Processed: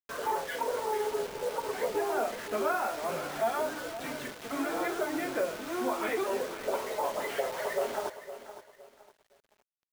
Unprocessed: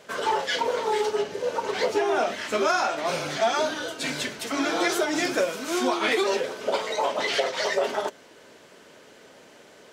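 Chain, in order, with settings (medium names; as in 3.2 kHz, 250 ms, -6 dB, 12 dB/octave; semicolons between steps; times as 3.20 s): low-pass 1.7 kHz 12 dB/octave; hum notches 50/100/150/200/250/300/350/400 Hz; word length cut 6-bit, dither none; bit-crushed delay 513 ms, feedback 35%, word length 8-bit, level -12.5 dB; trim -6 dB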